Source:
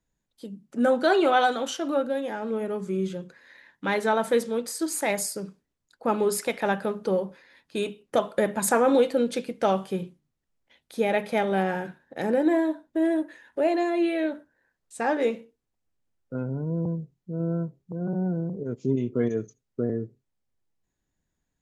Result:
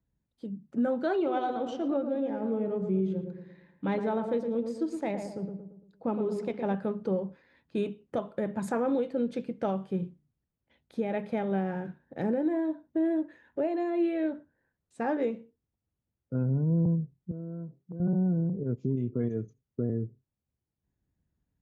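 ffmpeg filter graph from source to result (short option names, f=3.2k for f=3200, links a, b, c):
-filter_complex "[0:a]asettb=1/sr,asplit=3[a][b][c];[a]atrim=end=1.164[d];[b]atrim=start=1.16:end=6.75,asetpts=PTS-STARTPTS,afade=t=in:d=0.004:c=qsin,afade=t=out:st=5.586:d=0.004:c=qsin,equalizer=f=1.6k:t=o:w=0.87:g=-5.5,adynamicsmooth=sensitivity=2.5:basefreq=6.6k,asplit=2[e][f];[f]adelay=114,lowpass=f=1.4k:p=1,volume=-6dB,asplit=2[g][h];[h]adelay=114,lowpass=f=1.4k:p=1,volume=0.46,asplit=2[i][j];[j]adelay=114,lowpass=f=1.4k:p=1,volume=0.46,asplit=2[k][l];[l]adelay=114,lowpass=f=1.4k:p=1,volume=0.46,asplit=2[m][n];[n]adelay=114,lowpass=f=1.4k:p=1,volume=0.46,asplit=2[o][p];[p]adelay=114,lowpass=f=1.4k:p=1,volume=0.46[q];[e][g][i][k][m][o][q]amix=inputs=7:normalize=0,atrim=end_sample=246519[r];[c]atrim=start=6.746[s];[d][r]acrossfade=d=0.004:c1=hsin:c2=qsin[t];[t][s]acrossfade=d=0.004:c1=qsin:c2=hsin,asettb=1/sr,asplit=3[u][v][w];[u]atrim=end=17.314[x];[v]atrim=start=17.31:end=18,asetpts=PTS-STARTPTS,afade=t=in:d=0.004:c=qsin,afade=t=out:st=0.686:d=0.004:c=qsin,acompressor=threshold=-35dB:ratio=6:attack=3.2:release=140:knee=1:detection=peak,highpass=180,lowpass=6.4k[y];[w]atrim=start=17.996[z];[x][y]acrossfade=d=0.004:c1=hsin:c2=qsin[aa];[aa][z]acrossfade=d=0.004:c1=qsin:c2=hsin,highpass=76,aemphasis=mode=reproduction:type=riaa,alimiter=limit=-14dB:level=0:latency=1:release=484,volume=-6dB"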